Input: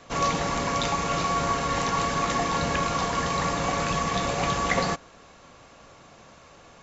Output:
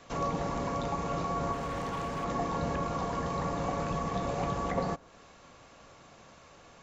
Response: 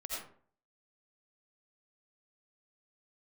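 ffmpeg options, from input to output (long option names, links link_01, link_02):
-filter_complex "[0:a]acrossover=split=1100[link_01][link_02];[link_02]acompressor=threshold=-42dB:ratio=5[link_03];[link_01][link_03]amix=inputs=2:normalize=0,asplit=3[link_04][link_05][link_06];[link_04]afade=type=out:start_time=1.52:duration=0.02[link_07];[link_05]asoftclip=type=hard:threshold=-27.5dB,afade=type=in:start_time=1.52:duration=0.02,afade=type=out:start_time=2.23:duration=0.02[link_08];[link_06]afade=type=in:start_time=2.23:duration=0.02[link_09];[link_07][link_08][link_09]amix=inputs=3:normalize=0,volume=-4dB"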